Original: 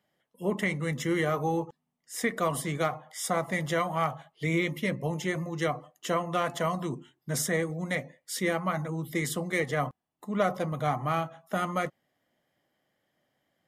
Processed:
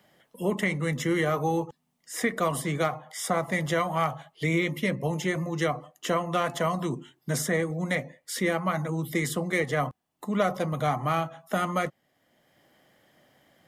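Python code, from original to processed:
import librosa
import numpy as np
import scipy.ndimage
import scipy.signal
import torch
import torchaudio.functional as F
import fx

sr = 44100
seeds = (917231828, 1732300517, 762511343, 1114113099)

y = fx.band_squash(x, sr, depth_pct=40)
y = y * librosa.db_to_amplitude(2.0)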